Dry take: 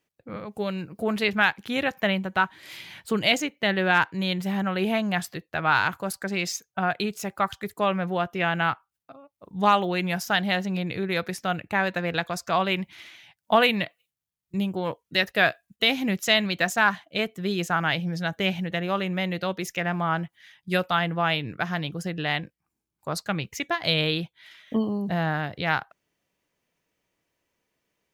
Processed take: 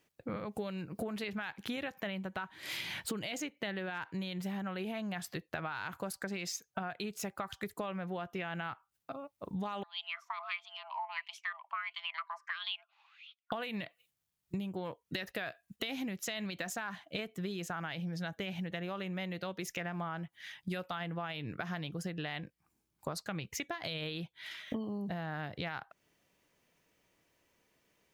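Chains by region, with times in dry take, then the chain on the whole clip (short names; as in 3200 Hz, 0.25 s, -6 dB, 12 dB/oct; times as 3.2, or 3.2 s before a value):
9.83–13.52 wah 1.5 Hz 450–3000 Hz, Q 5.8 + frequency shift +490 Hz
whole clip: limiter -17.5 dBFS; compressor 16:1, threshold -39 dBFS; gain +4 dB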